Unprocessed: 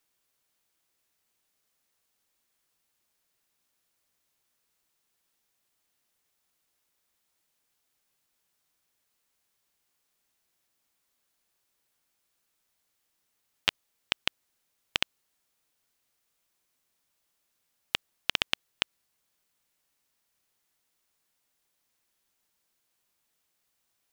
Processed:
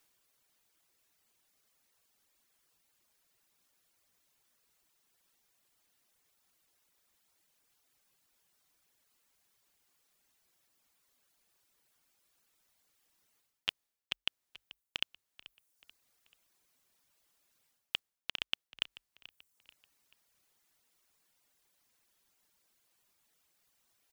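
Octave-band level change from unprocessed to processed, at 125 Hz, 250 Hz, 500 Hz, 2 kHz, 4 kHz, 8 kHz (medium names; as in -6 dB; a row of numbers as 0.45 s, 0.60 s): -12.5 dB, -12.5 dB, -12.5 dB, -9.0 dB, -6.5 dB, -12.0 dB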